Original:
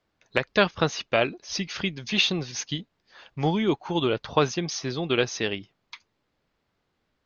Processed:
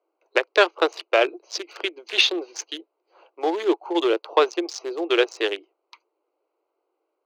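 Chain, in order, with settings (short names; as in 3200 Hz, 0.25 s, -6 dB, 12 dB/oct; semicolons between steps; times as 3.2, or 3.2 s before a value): Wiener smoothing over 25 samples; soft clip -7 dBFS, distortion -23 dB; Chebyshev high-pass 330 Hz, order 6; gain +6 dB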